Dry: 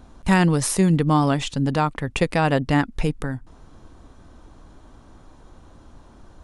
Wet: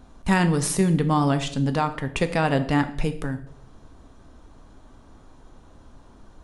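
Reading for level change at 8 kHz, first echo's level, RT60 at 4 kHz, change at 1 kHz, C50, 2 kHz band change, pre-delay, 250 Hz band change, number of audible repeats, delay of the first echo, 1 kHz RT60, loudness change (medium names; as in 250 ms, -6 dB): -2.0 dB, no echo, 0.50 s, -2.0 dB, 13.0 dB, -2.0 dB, 4 ms, -2.0 dB, no echo, no echo, 0.60 s, -2.0 dB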